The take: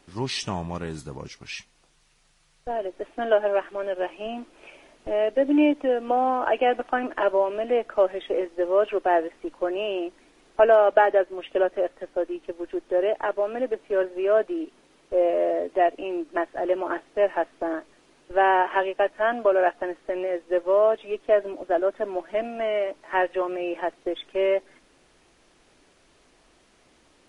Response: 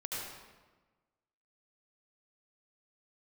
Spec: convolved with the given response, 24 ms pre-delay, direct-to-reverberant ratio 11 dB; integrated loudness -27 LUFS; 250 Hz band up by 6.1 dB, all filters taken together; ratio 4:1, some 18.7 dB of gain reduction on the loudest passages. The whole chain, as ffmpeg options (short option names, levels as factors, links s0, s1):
-filter_complex "[0:a]equalizer=f=250:t=o:g=8.5,acompressor=threshold=0.02:ratio=4,asplit=2[s0][s1];[1:a]atrim=start_sample=2205,adelay=24[s2];[s1][s2]afir=irnorm=-1:irlink=0,volume=0.211[s3];[s0][s3]amix=inputs=2:normalize=0,volume=2.82"